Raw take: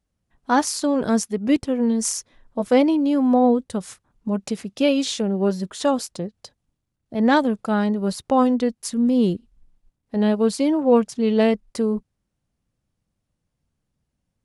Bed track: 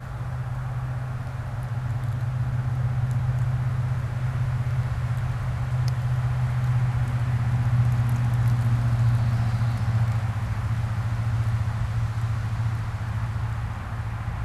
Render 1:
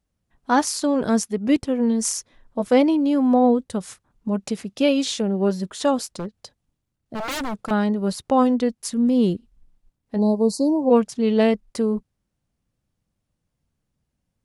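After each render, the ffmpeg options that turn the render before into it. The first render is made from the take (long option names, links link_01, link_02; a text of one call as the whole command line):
ffmpeg -i in.wav -filter_complex "[0:a]asettb=1/sr,asplit=3[link_01][link_02][link_03];[link_01]atrim=end=6.054[link_04];[link_02]atrim=start=6.05:end=7.71,asetpts=PTS-STARTPTS,afade=type=in:duration=0.004:curve=qsin,afade=type=out:start_time=1.656:duration=0.004:curve=qsin,aeval=exprs='0.075*(abs(mod(val(0)/0.075+3,4)-2)-1)':channel_layout=same[link_05];[link_03]atrim=start=7.706[link_06];[link_04][link_05]acrossfade=duration=0.004:curve1=hsin:curve2=qsin[link_07];[link_07][link_06]acrossfade=duration=0.004:curve1=qsin:curve2=hsin,asplit=3[link_08][link_09][link_10];[link_08]afade=type=out:start_time=10.17:duration=0.02[link_11];[link_09]asuperstop=centerf=2100:order=20:qfactor=0.7,afade=type=in:start_time=10.17:duration=0.02,afade=type=out:start_time=10.89:duration=0.02[link_12];[link_10]afade=type=in:start_time=10.89:duration=0.02[link_13];[link_11][link_12][link_13]amix=inputs=3:normalize=0" out.wav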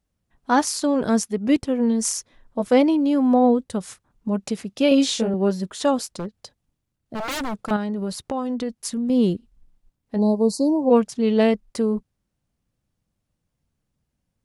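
ffmpeg -i in.wav -filter_complex "[0:a]asettb=1/sr,asplit=3[link_01][link_02][link_03];[link_01]atrim=end=4.894[link_04];[link_02]atrim=start=4.89:end=5.34,asetpts=PTS-STARTPTS,afade=type=in:duration=0.004:curve=qsin,afade=type=out:start_time=0.446:duration=0.004:curve=qsin,asplit=2[link_05][link_06];[link_06]adelay=22,volume=-2.5dB[link_07];[link_05][link_07]amix=inputs=2:normalize=0,atrim=end_sample=19845[link_08];[link_03]atrim=start=5.336[link_09];[link_04][link_08]acrossfade=duration=0.004:curve1=hsin:curve2=qsin[link_10];[link_10][link_09]acrossfade=duration=0.004:curve1=qsin:curve2=hsin,asettb=1/sr,asplit=3[link_11][link_12][link_13];[link_11]atrim=end=7.764[link_14];[link_12]atrim=start=7.76:end=9.1,asetpts=PTS-STARTPTS,afade=type=in:duration=0.004:curve=qsin,afade=type=out:start_time=1.336:duration=0.004:curve=qsin,acompressor=threshold=-22dB:ratio=6:attack=3.2:release=140:knee=1:detection=peak[link_15];[link_13]atrim=start=9.096[link_16];[link_14][link_15]acrossfade=duration=0.004:curve1=hsin:curve2=qsin[link_17];[link_17][link_16]acrossfade=duration=0.004:curve1=qsin:curve2=hsin" out.wav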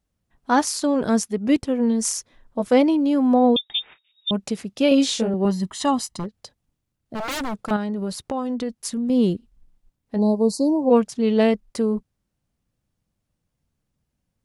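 ffmpeg -i in.wav -filter_complex "[0:a]asettb=1/sr,asplit=3[link_01][link_02][link_03];[link_01]atrim=end=3.564[link_04];[link_02]atrim=start=3.56:end=4.31,asetpts=PTS-STARTPTS,afade=type=in:duration=0.004:curve=qsin,afade=type=out:start_time=0.746:duration=0.004:curve=qsin,lowpass=frequency=3200:width_type=q:width=0.5098,lowpass=frequency=3200:width_type=q:width=0.6013,lowpass=frequency=3200:width_type=q:width=0.9,lowpass=frequency=3200:width_type=q:width=2.563,afreqshift=-3800[link_05];[link_03]atrim=start=4.306[link_06];[link_04][link_05]acrossfade=duration=0.004:curve1=hsin:curve2=qsin[link_07];[link_07][link_06]acrossfade=duration=0.004:curve1=qsin:curve2=hsin,asettb=1/sr,asplit=3[link_08][link_09][link_10];[link_08]atrim=end=5.454[link_11];[link_09]atrim=start=5.45:end=6.24,asetpts=PTS-STARTPTS,afade=type=in:duration=0.004:curve=qsin,afade=type=out:start_time=0.786:duration=0.004:curve=qsin,aecho=1:1:1:0.65,atrim=end_sample=34839[link_12];[link_10]atrim=start=6.236[link_13];[link_11][link_12]acrossfade=duration=0.004:curve1=hsin:curve2=qsin[link_14];[link_14][link_13]acrossfade=duration=0.004:curve1=qsin:curve2=hsin" out.wav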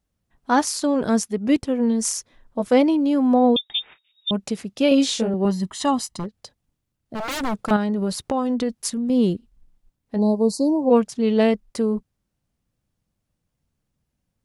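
ffmpeg -i in.wav -filter_complex "[0:a]asplit=3[link_01][link_02][link_03];[link_01]atrim=end=7.432[link_04];[link_02]atrim=start=7.428:end=8.902,asetpts=PTS-STARTPTS,volume=3.5dB[link_05];[link_03]atrim=start=8.898[link_06];[link_04][link_05]acrossfade=duration=0.004:curve1=hsin:curve2=hsin[link_07];[link_07][link_06]acrossfade=duration=0.004:curve1=hsin:curve2=hsin" out.wav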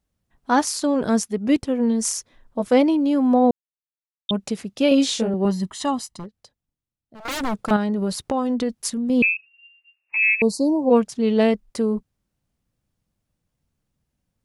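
ffmpeg -i in.wav -filter_complex "[0:a]asettb=1/sr,asplit=3[link_01][link_02][link_03];[link_01]atrim=end=9.224[link_04];[link_02]atrim=start=9.22:end=10.42,asetpts=PTS-STARTPTS,afade=type=in:duration=0.004:curve=qsin,afade=type=out:start_time=1.196:duration=0.004:curve=qsin,lowpass=frequency=2400:width_type=q:width=0.5098,lowpass=frequency=2400:width_type=q:width=0.6013,lowpass=frequency=2400:width_type=q:width=0.9,lowpass=frequency=2400:width_type=q:width=2.563,afreqshift=-2800[link_05];[link_03]atrim=start=10.416[link_06];[link_04][link_05]acrossfade=duration=0.004:curve1=hsin:curve2=qsin[link_07];[link_07][link_06]acrossfade=duration=0.004:curve1=qsin:curve2=hsin,asplit=4[link_08][link_09][link_10][link_11];[link_08]atrim=end=3.51,asetpts=PTS-STARTPTS,afade=type=out:start_time=3.506:duration=0.004:curve=hsin[link_12];[link_09]atrim=start=3.51:end=4.29,asetpts=PTS-STARTPTS,volume=0[link_13];[link_10]atrim=start=4.29:end=7.25,asetpts=PTS-STARTPTS,afade=type=in:duration=0.004:curve=hsin,afade=type=out:start_time=1.31:duration=1.65:curve=qua:silence=0.199526[link_14];[link_11]atrim=start=7.25,asetpts=PTS-STARTPTS,afade=type=in:duration=0.004:curve=hsin:silence=0.199526[link_15];[link_12][link_13][link_14][link_15]concat=n=4:v=0:a=1" out.wav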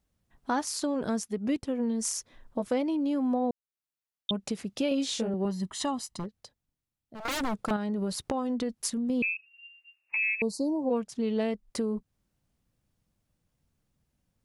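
ffmpeg -i in.wav -af "acompressor=threshold=-31dB:ratio=2.5" out.wav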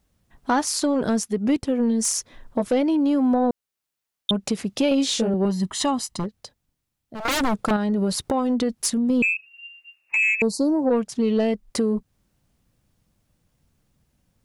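ffmpeg -i in.wav -af "aeval=exprs='0.224*sin(PI/2*1.78*val(0)/0.224)':channel_layout=same" out.wav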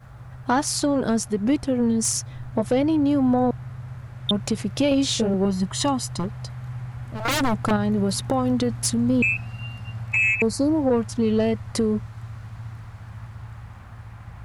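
ffmpeg -i in.wav -i bed.wav -filter_complex "[1:a]volume=-10.5dB[link_01];[0:a][link_01]amix=inputs=2:normalize=0" out.wav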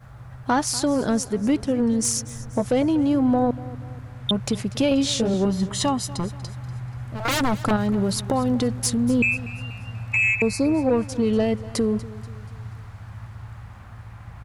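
ffmpeg -i in.wav -af "aecho=1:1:241|482|723|964:0.126|0.0567|0.0255|0.0115" out.wav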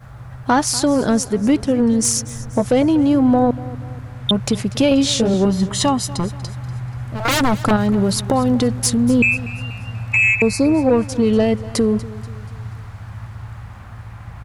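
ffmpeg -i in.wav -af "volume=5.5dB" out.wav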